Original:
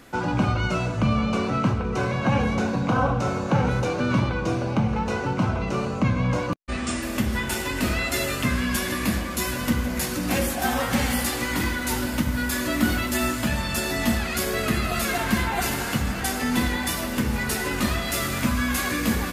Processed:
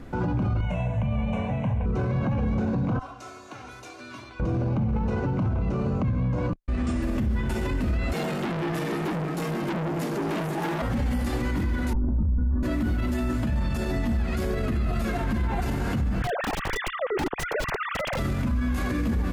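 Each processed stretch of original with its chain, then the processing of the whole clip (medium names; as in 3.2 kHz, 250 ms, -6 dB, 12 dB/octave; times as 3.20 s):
0.61–1.86 s: bass shelf 320 Hz -7.5 dB + static phaser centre 1.3 kHz, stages 6
2.99–4.40 s: differentiator + comb 2.9 ms, depth 78%
8.13–10.82 s: frequency shift +99 Hz + transformer saturation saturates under 3.1 kHz
11.93–12.63 s: Chebyshev low-pass 1.2 kHz, order 3 + tilt EQ -3.5 dB/octave + three-phase chorus
16.22–18.19 s: formants replaced by sine waves + treble shelf 3 kHz -5.5 dB + integer overflow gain 19.5 dB
whole clip: tilt EQ -3.5 dB/octave; peak limiter -19 dBFS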